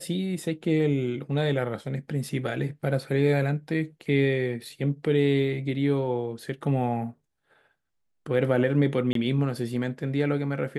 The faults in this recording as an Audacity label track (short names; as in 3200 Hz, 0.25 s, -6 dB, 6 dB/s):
9.130000	9.150000	gap 23 ms